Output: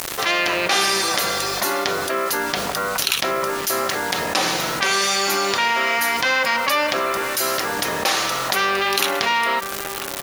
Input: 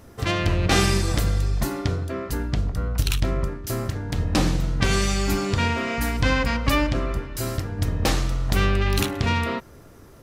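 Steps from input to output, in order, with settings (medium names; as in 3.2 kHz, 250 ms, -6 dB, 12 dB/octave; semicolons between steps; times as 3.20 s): high-pass 670 Hz 12 dB/octave; band-stop 7.9 kHz, Q 5.8; comb 5.3 ms, depth 30%; word length cut 8-bit, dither none; echo from a far wall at 170 m, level -28 dB; level flattener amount 70%; trim +3 dB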